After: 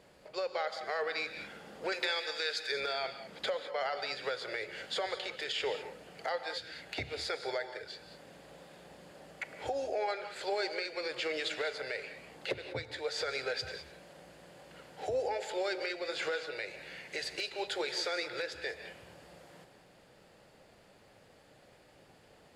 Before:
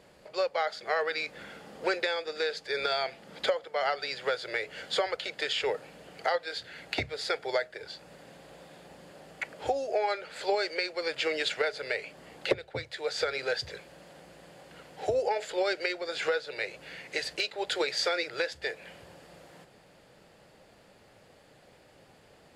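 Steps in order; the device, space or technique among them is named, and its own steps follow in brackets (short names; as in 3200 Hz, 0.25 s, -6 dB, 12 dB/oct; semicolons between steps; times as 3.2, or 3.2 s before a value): clipper into limiter (hard clip -17 dBFS, distortion -31 dB; limiter -22.5 dBFS, peak gain reduction 5.5 dB); 1.92–2.72 tilt shelf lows -7 dB, about 910 Hz; non-linear reverb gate 0.23 s rising, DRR 9 dB; gain -3 dB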